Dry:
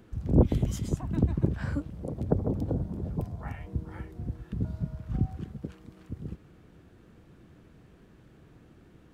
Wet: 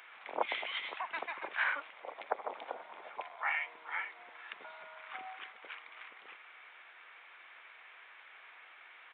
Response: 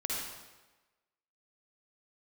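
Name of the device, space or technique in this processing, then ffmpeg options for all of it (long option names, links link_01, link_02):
musical greeting card: -af "aresample=8000,aresample=44100,highpass=frequency=890:width=0.5412,highpass=frequency=890:width=1.3066,equalizer=frequency=2200:width_type=o:width=0.4:gain=10.5,volume=10.5dB"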